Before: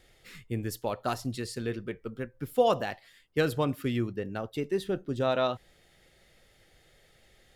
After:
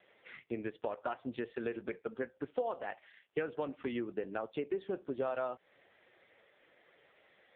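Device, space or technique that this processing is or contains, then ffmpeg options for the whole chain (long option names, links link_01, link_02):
voicemail: -filter_complex "[0:a]asettb=1/sr,asplit=3[link_01][link_02][link_03];[link_01]atrim=end=3.484[link_04];[link_02]atrim=start=3.48:end=4.07,asetpts=PTS-STARTPTS,afade=type=in:duration=0.004:curve=qsin,afade=type=out:start_time=0.586:duration=0.004:curve=qsin,equalizer=frequency=1300:width=2.2:gain=-2.5[link_05];[link_03]atrim=start=4.066[link_06];[link_04][link_05]acrossfade=duration=0.004:curve1=hsin:curve2=qsin[link_07];[link_07][link_06]acrossfade=duration=0.004:curve1=qsin:curve2=hsin,highpass=370,lowpass=2700,acompressor=threshold=-38dB:ratio=6,volume=5.5dB" -ar 8000 -c:a libopencore_amrnb -b:a 5150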